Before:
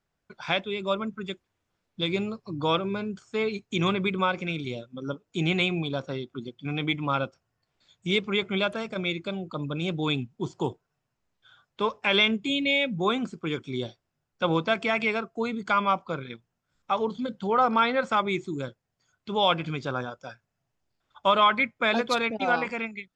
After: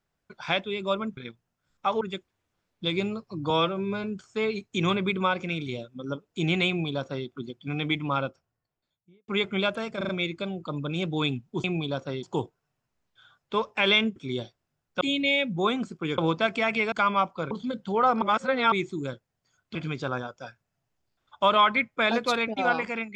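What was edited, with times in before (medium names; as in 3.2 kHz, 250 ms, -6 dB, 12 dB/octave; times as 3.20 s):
2.66–3.02 s: stretch 1.5×
5.66–6.25 s: copy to 10.50 s
6.96–8.26 s: studio fade out
8.95 s: stutter 0.04 s, 4 plays
13.60–14.45 s: move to 12.43 s
15.19–15.63 s: delete
16.22–17.06 s: move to 1.17 s
17.77–18.27 s: reverse
19.30–19.58 s: delete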